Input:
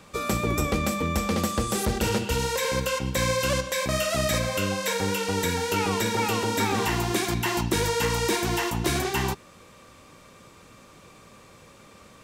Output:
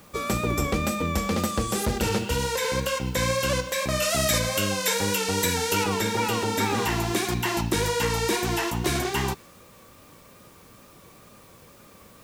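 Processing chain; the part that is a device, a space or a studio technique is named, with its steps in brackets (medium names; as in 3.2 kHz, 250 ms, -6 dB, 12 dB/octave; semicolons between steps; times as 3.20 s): 4.02–5.84 s: treble shelf 3.6 kHz +7 dB; plain cassette with noise reduction switched in (tape noise reduction on one side only decoder only; wow and flutter; white noise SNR 30 dB)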